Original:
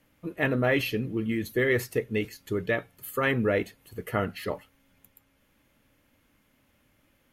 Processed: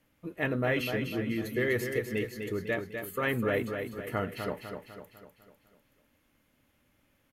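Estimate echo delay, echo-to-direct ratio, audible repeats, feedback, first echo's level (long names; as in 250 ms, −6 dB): 250 ms, −5.5 dB, 5, 49%, −6.5 dB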